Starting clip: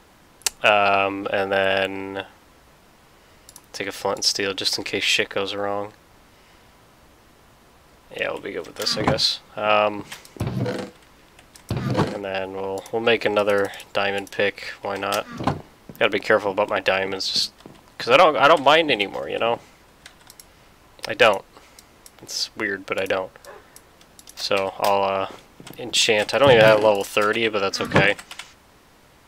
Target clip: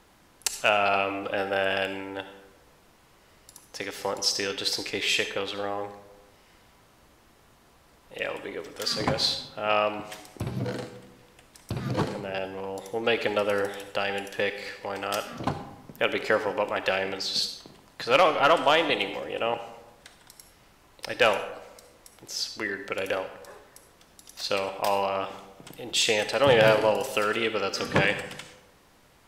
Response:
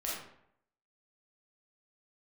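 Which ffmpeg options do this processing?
-filter_complex "[0:a]asplit=2[link_01][link_02];[1:a]atrim=start_sample=2205,asetrate=27342,aresample=44100,highshelf=frequency=4100:gain=8.5[link_03];[link_02][link_03]afir=irnorm=-1:irlink=0,volume=-15.5dB[link_04];[link_01][link_04]amix=inputs=2:normalize=0,volume=-7.5dB"

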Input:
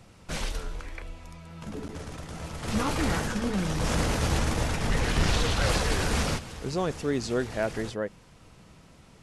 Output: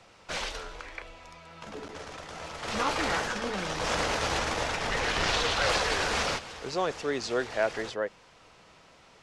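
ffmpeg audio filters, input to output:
ffmpeg -i in.wav -filter_complex "[0:a]acrossover=split=410 7000:gain=0.178 1 0.158[link_01][link_02][link_03];[link_01][link_02][link_03]amix=inputs=3:normalize=0,volume=3dB" out.wav

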